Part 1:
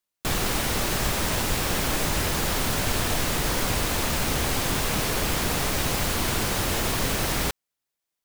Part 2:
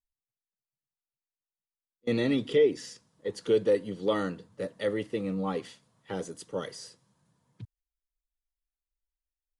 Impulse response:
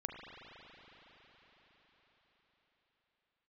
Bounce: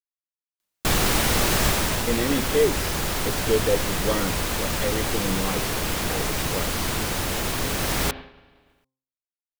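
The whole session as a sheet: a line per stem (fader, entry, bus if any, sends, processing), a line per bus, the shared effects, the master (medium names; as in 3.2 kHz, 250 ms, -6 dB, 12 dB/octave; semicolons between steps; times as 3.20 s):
+3.0 dB, 0.60 s, send -11.5 dB, upward compressor, threshold -31 dBFS; auto duck -7 dB, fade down 0.35 s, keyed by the second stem
+2.0 dB, 0.00 s, no send, none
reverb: on, RT60 5.4 s, pre-delay 36 ms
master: expander -31 dBFS; de-hum 131.7 Hz, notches 8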